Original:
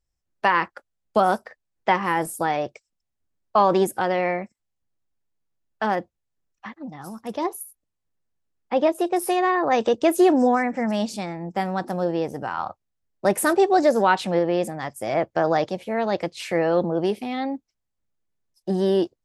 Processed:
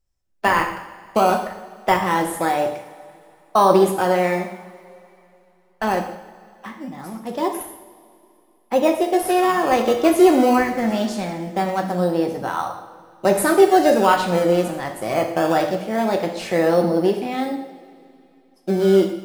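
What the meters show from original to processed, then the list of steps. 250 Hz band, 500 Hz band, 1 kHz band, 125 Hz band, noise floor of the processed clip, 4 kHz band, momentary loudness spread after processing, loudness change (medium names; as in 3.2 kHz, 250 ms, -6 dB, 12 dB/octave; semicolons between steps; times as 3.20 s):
+4.0 dB, +4.0 dB, +3.0 dB, +4.0 dB, -57 dBFS, +4.0 dB, 17 LU, +3.5 dB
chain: in parallel at -10.5 dB: decimation with a swept rate 17×, swing 100% 0.22 Hz; on the sum: two-slope reverb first 0.73 s, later 3 s, from -18 dB, DRR 2.5 dB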